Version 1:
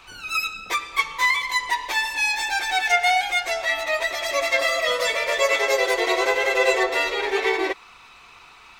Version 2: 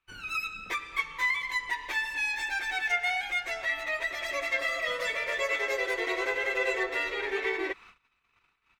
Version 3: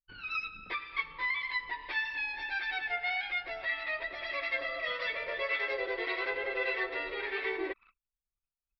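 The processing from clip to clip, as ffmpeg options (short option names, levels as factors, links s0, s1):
-filter_complex "[0:a]agate=range=0.0355:threshold=0.00631:ratio=16:detection=peak,firequalizer=gain_entry='entry(170,0);entry(740,-9);entry(1700,0);entry(4300,-9)':delay=0.05:min_phase=1,asplit=2[s0][s1];[s1]acompressor=threshold=0.0251:ratio=6,volume=1.19[s2];[s0][s2]amix=inputs=2:normalize=0,volume=0.398"
-filter_complex "[0:a]aresample=11025,aresample=44100,anlmdn=0.00631,acrossover=split=940[s0][s1];[s0]aeval=exprs='val(0)*(1-0.5/2+0.5/2*cos(2*PI*1.7*n/s))':c=same[s2];[s1]aeval=exprs='val(0)*(1-0.5/2-0.5/2*cos(2*PI*1.7*n/s))':c=same[s3];[s2][s3]amix=inputs=2:normalize=0,volume=0.841"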